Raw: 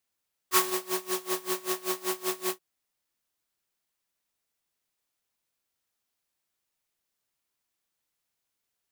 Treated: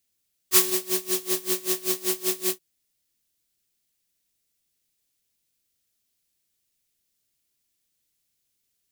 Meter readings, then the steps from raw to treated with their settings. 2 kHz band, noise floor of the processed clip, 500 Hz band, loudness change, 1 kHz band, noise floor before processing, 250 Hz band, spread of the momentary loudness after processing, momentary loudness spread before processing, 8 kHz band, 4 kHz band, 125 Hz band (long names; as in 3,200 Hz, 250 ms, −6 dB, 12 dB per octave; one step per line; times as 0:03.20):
+0.5 dB, −76 dBFS, +3.0 dB, +6.0 dB, −6.0 dB, −83 dBFS, +3.0 dB, 7 LU, 7 LU, +7.5 dB, +5.5 dB, can't be measured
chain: parametric band 1,000 Hz −15 dB 2 octaves
level +8 dB